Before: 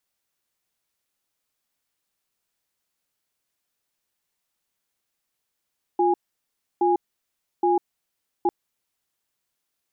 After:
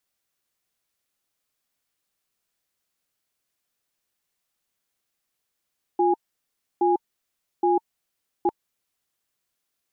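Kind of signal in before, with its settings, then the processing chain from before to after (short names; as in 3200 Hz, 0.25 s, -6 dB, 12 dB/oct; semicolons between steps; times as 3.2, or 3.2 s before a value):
cadence 353 Hz, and 824 Hz, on 0.15 s, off 0.67 s, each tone -19.5 dBFS 2.50 s
notch 910 Hz, Q 16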